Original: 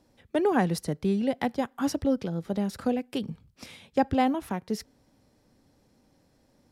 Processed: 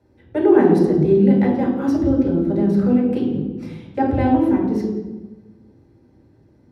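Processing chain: small resonant body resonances 350 Hz, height 13 dB, ringing for 70 ms; reverb RT60 1.2 s, pre-delay 3 ms, DRR -3 dB; gain -10.5 dB

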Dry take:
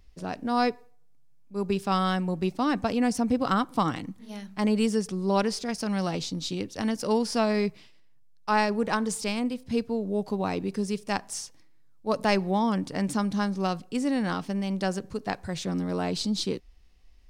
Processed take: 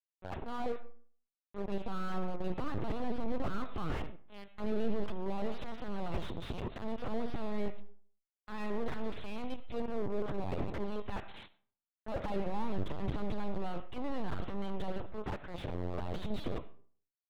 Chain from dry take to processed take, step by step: notches 60/120/180/240/300/360/420/480/540/600 Hz; gate -40 dBFS, range -58 dB; 7.24–9.72 band shelf 890 Hz -9 dB; transient shaper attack -9 dB, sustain +8 dB; compressor 2:1, threshold -54 dBFS, peak gain reduction 18 dB; hard clip -37.5 dBFS, distortion -20 dB; power-law curve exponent 3; LPC vocoder at 8 kHz pitch kept; reverb RT60 0.45 s, pre-delay 35 ms, DRR 18 dB; slew limiter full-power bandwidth 2.2 Hz; gain +15 dB

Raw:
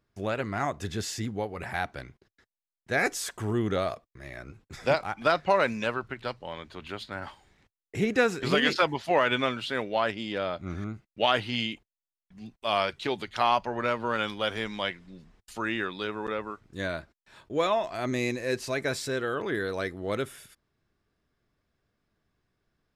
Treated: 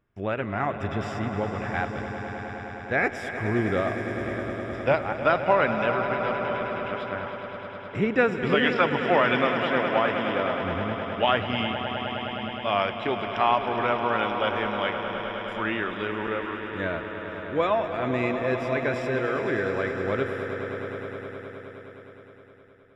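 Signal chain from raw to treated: polynomial smoothing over 25 samples; on a send: swelling echo 0.104 s, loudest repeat 5, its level -12 dB; on the sum: gain +2 dB

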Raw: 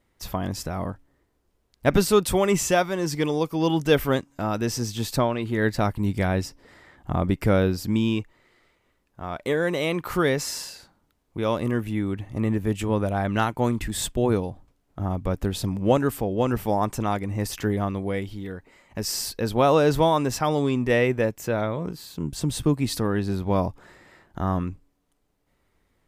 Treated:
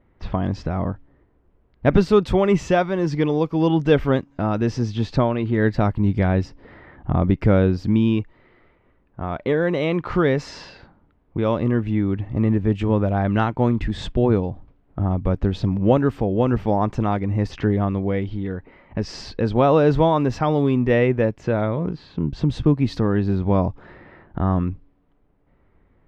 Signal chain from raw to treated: low-pass opened by the level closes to 2200 Hz, open at -20.5 dBFS; low shelf 450 Hz +4.5 dB; in parallel at +1 dB: compressor, threshold -32 dBFS, peak gain reduction 20 dB; on the sum: air absorption 210 m

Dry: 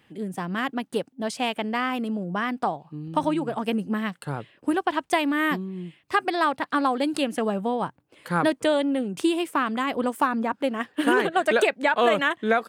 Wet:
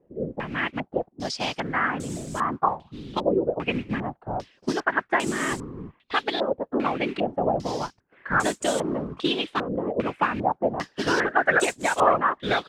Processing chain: modulation noise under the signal 15 dB; whisperiser; stepped low-pass 2.5 Hz 520–7700 Hz; gain -3.5 dB

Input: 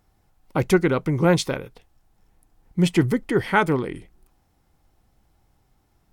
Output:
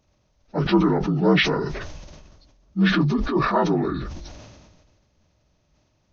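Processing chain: inharmonic rescaling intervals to 76%; sustainer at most 34 dB/s

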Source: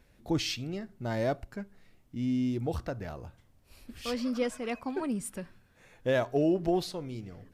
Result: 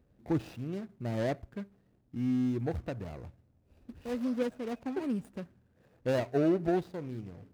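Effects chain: median filter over 41 samples; HPF 60 Hz

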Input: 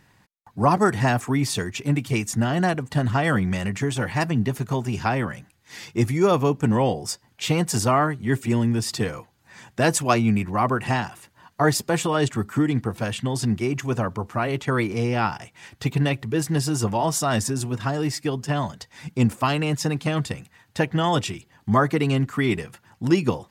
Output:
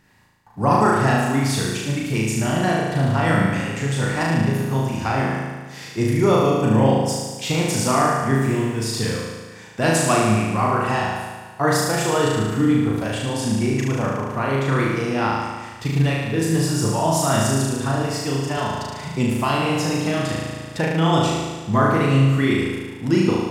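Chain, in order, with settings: flutter echo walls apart 6.3 m, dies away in 1.4 s; 18.57–20.79 three-band squash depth 40%; gain -2 dB

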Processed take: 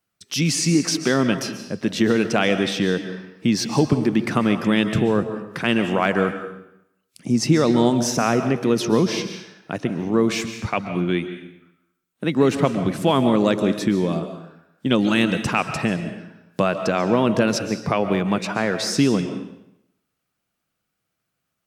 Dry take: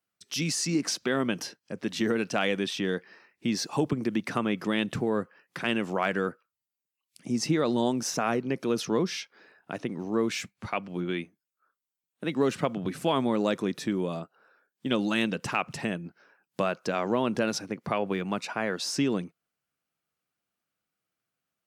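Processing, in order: low shelf 140 Hz +9.5 dB; on a send: reverb RT60 0.80 s, pre-delay 0.1 s, DRR 8.5 dB; on the sum: gain +6.5 dB

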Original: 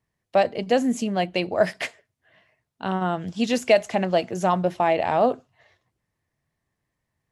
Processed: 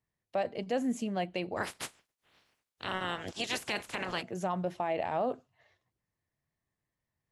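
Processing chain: 1.56–4.21 spectral limiter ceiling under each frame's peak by 27 dB; dynamic EQ 5200 Hz, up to -5 dB, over -40 dBFS, Q 1.2; limiter -13.5 dBFS, peak gain reduction 10.5 dB; gain -8.5 dB

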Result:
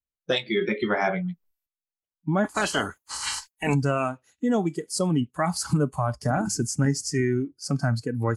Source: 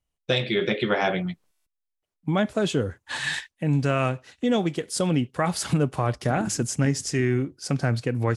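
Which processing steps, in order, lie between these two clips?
2.43–3.73 spectral limiter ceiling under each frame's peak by 24 dB; spectral noise reduction 16 dB

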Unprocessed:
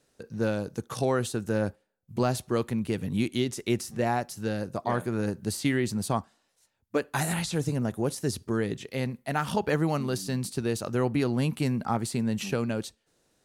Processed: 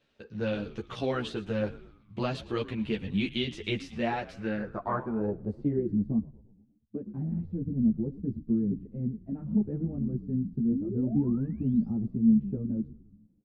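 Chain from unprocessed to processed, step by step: dynamic EQ 1000 Hz, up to -4 dB, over -40 dBFS, Q 1.1; painted sound rise, 10.72–11.93, 230–6100 Hz -29 dBFS; frequency-shifting echo 0.113 s, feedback 53%, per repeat -81 Hz, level -17 dB; low-pass sweep 3100 Hz -> 230 Hz, 4.22–6.19; ensemble effect

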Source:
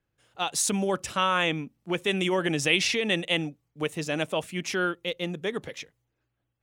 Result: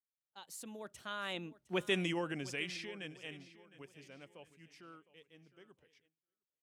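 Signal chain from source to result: Doppler pass-by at 1.85, 32 m/s, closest 6.6 m; feedback echo 0.71 s, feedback 37%, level -18 dB; gate with hold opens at -54 dBFS; gain -6 dB

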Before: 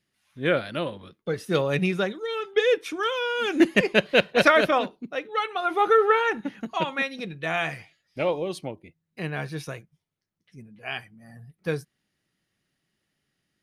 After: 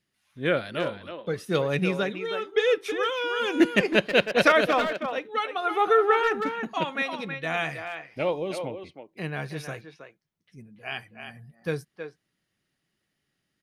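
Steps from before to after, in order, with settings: speakerphone echo 0.32 s, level -7 dB; gain -1.5 dB

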